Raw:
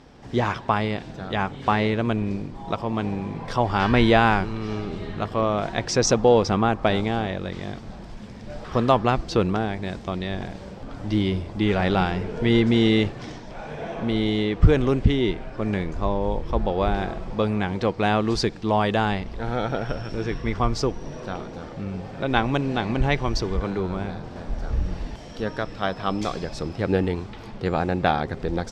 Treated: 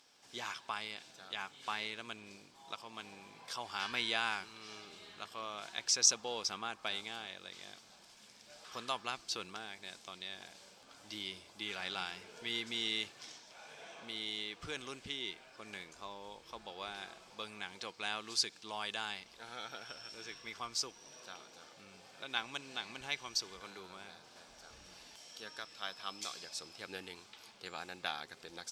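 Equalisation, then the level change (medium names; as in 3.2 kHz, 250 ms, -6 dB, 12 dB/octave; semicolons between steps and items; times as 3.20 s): differentiator; band-stop 1.9 kHz, Q 11; dynamic bell 590 Hz, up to -4 dB, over -53 dBFS, Q 1.4; 0.0 dB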